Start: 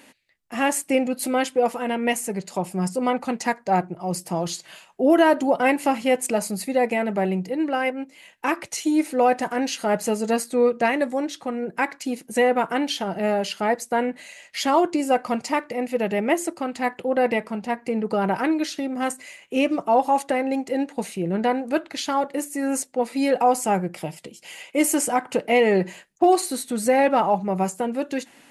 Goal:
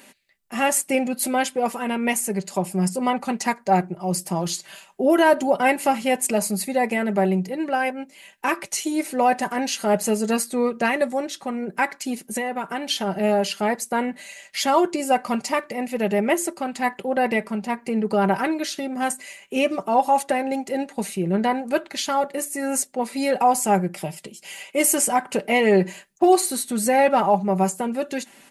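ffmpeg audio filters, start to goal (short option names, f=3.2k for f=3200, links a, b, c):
-filter_complex "[0:a]highshelf=f=7.2k:g=6.5,aecho=1:1:5.1:0.46,asettb=1/sr,asplit=3[a][b][c];[a]atrim=end=12.284[d];[b]atrim=start=12.28:end=12.9,asetpts=PTS-STARTPTS,afade=t=in:d=0.004:c=qsin,afade=t=out:st=0.616:d=0.004:c=qsin,acompressor=threshold=-24dB:ratio=6[e];[c]atrim=start=12.896[f];[d][e]acrossfade=d=0.004:c1=hsin:c2=qsin[g];[g][f]acrossfade=d=0.004:c1=qsin:c2=hsin"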